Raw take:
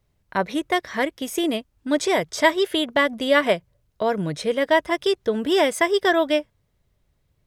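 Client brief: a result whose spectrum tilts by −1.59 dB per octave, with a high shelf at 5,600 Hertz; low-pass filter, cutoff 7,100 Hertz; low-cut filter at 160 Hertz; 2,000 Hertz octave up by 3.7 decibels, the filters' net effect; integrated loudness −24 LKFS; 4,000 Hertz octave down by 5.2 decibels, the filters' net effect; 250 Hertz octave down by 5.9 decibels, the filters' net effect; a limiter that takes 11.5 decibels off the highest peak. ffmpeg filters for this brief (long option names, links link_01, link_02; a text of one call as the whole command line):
ffmpeg -i in.wav -af "highpass=160,lowpass=7100,equalizer=frequency=250:width_type=o:gain=-8,equalizer=frequency=2000:width_type=o:gain=6.5,equalizer=frequency=4000:width_type=o:gain=-7,highshelf=frequency=5600:gain=-8.5,volume=2dB,alimiter=limit=-11.5dB:level=0:latency=1" out.wav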